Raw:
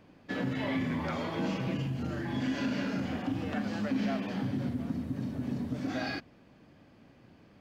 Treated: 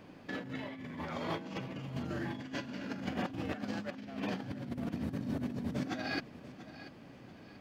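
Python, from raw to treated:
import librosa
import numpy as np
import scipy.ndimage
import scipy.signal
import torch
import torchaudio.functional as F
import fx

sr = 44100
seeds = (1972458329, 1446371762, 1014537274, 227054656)

y = fx.over_compress(x, sr, threshold_db=-37.0, ratio=-0.5)
y = fx.low_shelf(y, sr, hz=75.0, db=-8.0)
y = fx.echo_feedback(y, sr, ms=687, feedback_pct=34, wet_db=-15.0)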